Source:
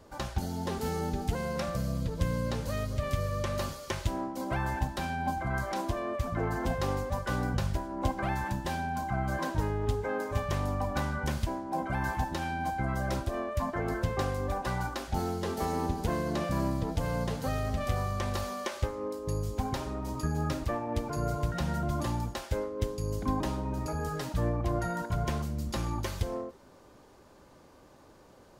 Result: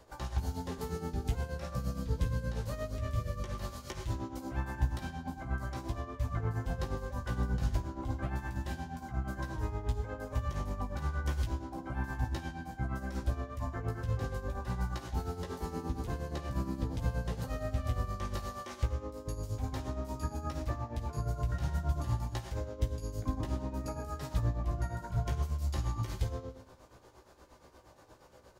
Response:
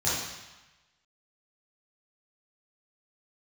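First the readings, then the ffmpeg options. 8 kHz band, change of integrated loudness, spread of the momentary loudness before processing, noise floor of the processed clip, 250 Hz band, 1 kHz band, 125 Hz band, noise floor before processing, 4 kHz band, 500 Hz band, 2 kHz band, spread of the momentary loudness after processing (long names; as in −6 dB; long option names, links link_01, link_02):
−6.5 dB, −4.0 dB, 3 LU, −57 dBFS, −6.5 dB, −8.5 dB, −2.0 dB, −56 dBFS, −7.5 dB, −8.5 dB, −7.5 dB, 5 LU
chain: -filter_complex "[0:a]acrossover=split=320[link_01][link_02];[link_02]acompressor=threshold=-42dB:ratio=3[link_03];[link_01][link_03]amix=inputs=2:normalize=0,asplit=2[link_04][link_05];[1:a]atrim=start_sample=2205,adelay=28[link_06];[link_05][link_06]afir=irnorm=-1:irlink=0,volume=-18dB[link_07];[link_04][link_07]amix=inputs=2:normalize=0,tremolo=f=8.5:d=0.69,equalizer=frequency=210:width=0.98:gain=-6,asplit=2[link_08][link_09];[link_09]adelay=16,volume=-5dB[link_10];[link_08][link_10]amix=inputs=2:normalize=0"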